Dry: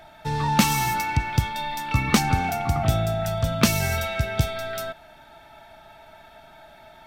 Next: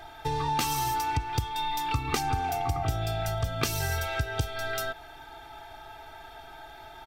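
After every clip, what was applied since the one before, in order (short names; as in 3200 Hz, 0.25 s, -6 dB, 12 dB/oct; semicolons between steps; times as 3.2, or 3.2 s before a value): spectral gain 3.01–3.24, 2200–5400 Hz +6 dB; comb 2.5 ms, depth 98%; compressor 3:1, threshold -28 dBFS, peak gain reduction 12 dB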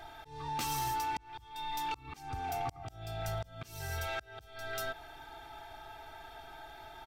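auto swell 0.468 s; soft clip -25 dBFS, distortion -18 dB; gain -3.5 dB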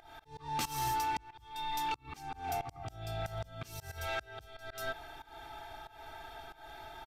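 downsampling 32000 Hz; pump 92 bpm, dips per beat 1, -19 dB, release 0.256 s; auto swell 0.18 s; gain +1.5 dB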